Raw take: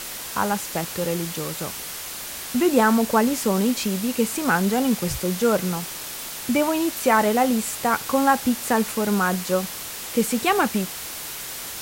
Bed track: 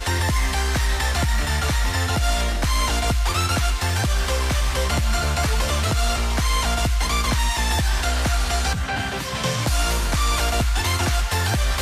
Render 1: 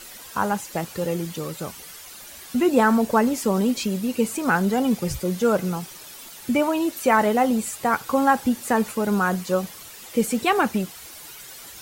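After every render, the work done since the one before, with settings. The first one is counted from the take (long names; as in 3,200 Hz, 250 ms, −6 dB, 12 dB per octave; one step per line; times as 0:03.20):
broadband denoise 11 dB, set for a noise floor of −34 dBFS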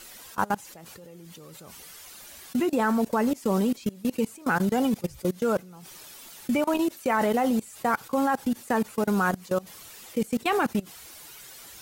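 output level in coarse steps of 23 dB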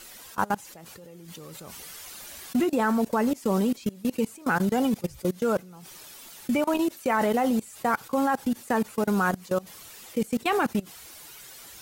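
0:01.28–0:02.64: leveller curve on the samples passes 1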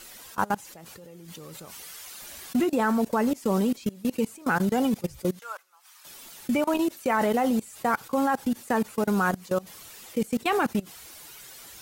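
0:01.65–0:02.22: low-shelf EQ 460 Hz −7 dB
0:05.39–0:06.05: four-pole ladder high-pass 880 Hz, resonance 35%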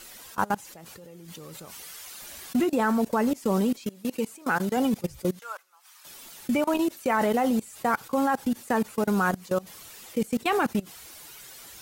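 0:03.77–0:04.77: low-shelf EQ 180 Hz −9 dB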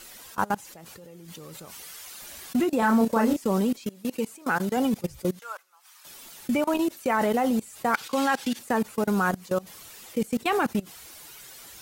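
0:02.79–0:03.37: double-tracking delay 31 ms −2.5 dB
0:07.94–0:08.59: meter weighting curve D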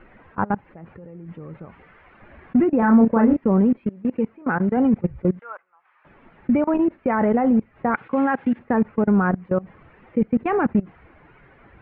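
Butterworth low-pass 2,200 Hz 36 dB per octave
low-shelf EQ 380 Hz +10.5 dB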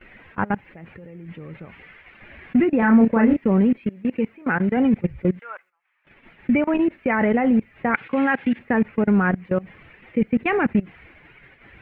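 noise gate −51 dBFS, range −15 dB
high shelf with overshoot 1,600 Hz +9 dB, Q 1.5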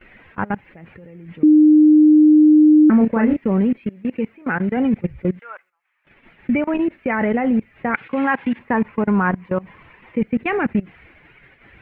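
0:01.43–0:02.90: beep over 305 Hz −7 dBFS
0:08.24–0:10.23: parametric band 1,000 Hz +12 dB 0.34 octaves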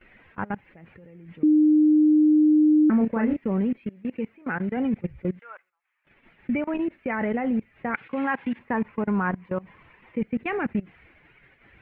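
level −7 dB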